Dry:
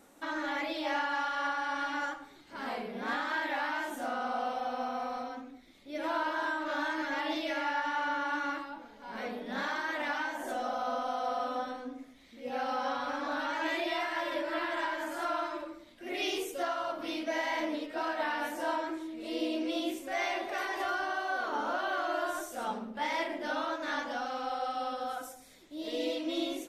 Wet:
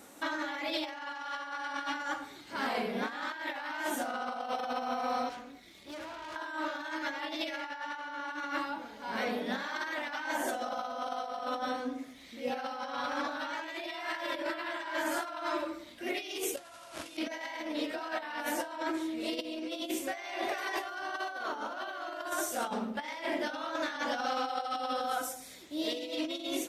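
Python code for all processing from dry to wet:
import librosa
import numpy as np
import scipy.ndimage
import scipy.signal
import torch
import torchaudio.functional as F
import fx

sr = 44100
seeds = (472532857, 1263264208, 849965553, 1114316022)

y = fx.chain(x, sr, fx.over_compress(threshold_db=-39.0, ratio=-1.0),
    fx.notch_comb(f0_hz=260.0),
    fx.tube_stage(drive_db=46.0, bias=0.75), at=(5.29, 6.36))
y = fx.chain(y, sr, fx.low_shelf(hz=280.0, db=-3.0),
    fx.quant_companded(bits=2),
    fx.brickwall_lowpass(high_hz=12000.0), at=(16.57, 17.17))
y = scipy.signal.sosfilt(scipy.signal.butter(2, 55.0, 'highpass', fs=sr, output='sos'), y)
y = fx.high_shelf(y, sr, hz=2100.0, db=4.5)
y = fx.over_compress(y, sr, threshold_db=-36.0, ratio=-0.5)
y = y * 10.0 ** (1.0 / 20.0)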